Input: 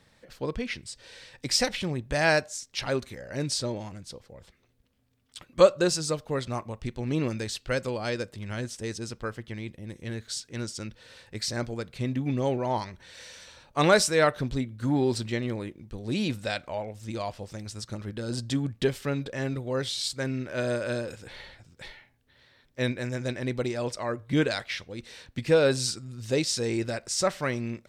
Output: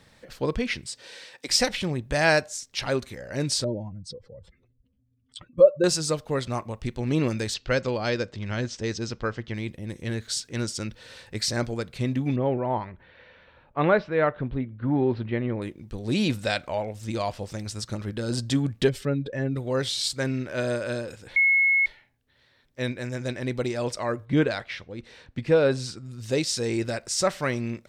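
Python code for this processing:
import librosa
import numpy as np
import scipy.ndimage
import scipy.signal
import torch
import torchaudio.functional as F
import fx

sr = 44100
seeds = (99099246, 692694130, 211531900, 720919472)

y = fx.highpass(x, sr, hz=fx.line((0.85, 120.0), (1.48, 410.0)), slope=12, at=(0.85, 1.48), fade=0.02)
y = fx.spec_expand(y, sr, power=2.0, at=(3.64, 5.84))
y = fx.cheby2_lowpass(y, sr, hz=11000.0, order=4, stop_db=40, at=(7.54, 9.54))
y = fx.bessel_lowpass(y, sr, hz=1900.0, order=6, at=(12.36, 15.62))
y = fx.spec_expand(y, sr, power=1.5, at=(18.88, 19.55), fade=0.02)
y = fx.lowpass(y, sr, hz=2100.0, slope=6, at=(24.25, 26.05))
y = fx.edit(y, sr, fx.bleep(start_s=21.36, length_s=0.5, hz=2180.0, db=-14.5), tone=tone)
y = fx.rider(y, sr, range_db=5, speed_s=2.0)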